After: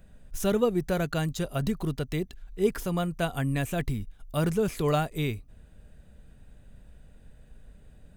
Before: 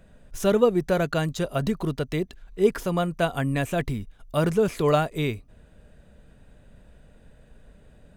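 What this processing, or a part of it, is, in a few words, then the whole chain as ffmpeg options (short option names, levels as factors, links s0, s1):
smiley-face EQ: -af "lowshelf=f=110:g=6,equalizer=f=710:t=o:w=1.6:g=-4,equalizer=f=770:t=o:w=0.24:g=4,highshelf=f=9600:g=8,volume=0.668"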